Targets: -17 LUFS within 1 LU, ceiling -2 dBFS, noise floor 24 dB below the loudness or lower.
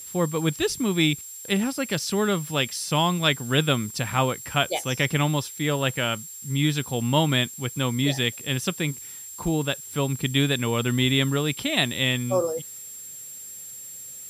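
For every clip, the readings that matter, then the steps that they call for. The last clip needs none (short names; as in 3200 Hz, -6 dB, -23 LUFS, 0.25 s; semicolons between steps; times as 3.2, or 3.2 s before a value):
steady tone 7500 Hz; tone level -38 dBFS; noise floor -40 dBFS; noise floor target -49 dBFS; loudness -24.5 LUFS; peak -7.5 dBFS; loudness target -17.0 LUFS
-> notch 7500 Hz, Q 30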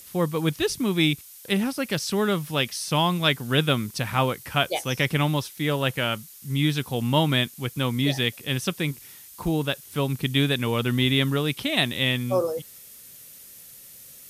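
steady tone none; noise floor -46 dBFS; noise floor target -49 dBFS
-> denoiser 6 dB, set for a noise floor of -46 dBFS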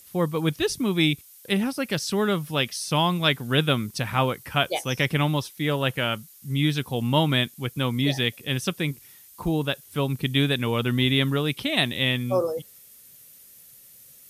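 noise floor -51 dBFS; loudness -24.5 LUFS; peak -7.5 dBFS; loudness target -17.0 LUFS
-> gain +7.5 dB; limiter -2 dBFS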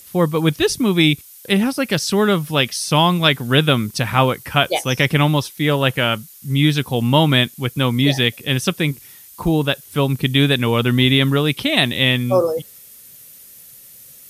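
loudness -17.5 LUFS; peak -2.0 dBFS; noise floor -43 dBFS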